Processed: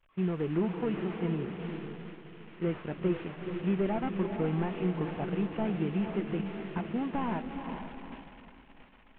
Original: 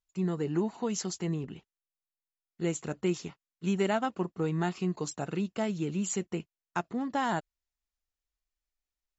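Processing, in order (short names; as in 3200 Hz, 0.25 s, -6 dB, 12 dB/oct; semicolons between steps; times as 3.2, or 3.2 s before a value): delta modulation 16 kbps, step -41.5 dBFS; diffused feedback echo 0.451 s, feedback 57%, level -6.5 dB; expander -37 dBFS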